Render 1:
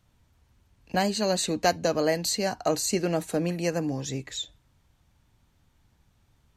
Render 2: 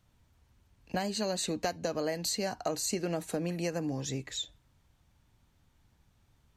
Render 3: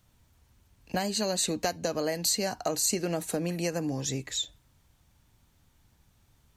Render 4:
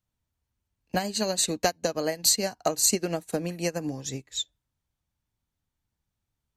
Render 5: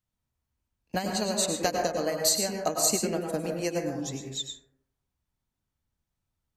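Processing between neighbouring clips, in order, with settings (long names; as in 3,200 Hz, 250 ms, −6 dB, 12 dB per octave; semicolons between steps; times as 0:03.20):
downward compressor 6 to 1, threshold −26 dBFS, peak gain reduction 9.5 dB; level −2.5 dB
high-shelf EQ 6,300 Hz +8 dB; level +2.5 dB
expander for the loud parts 2.5 to 1, over −42 dBFS; level +7 dB
dense smooth reverb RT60 0.77 s, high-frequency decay 0.3×, pre-delay 90 ms, DRR 1.5 dB; level −3 dB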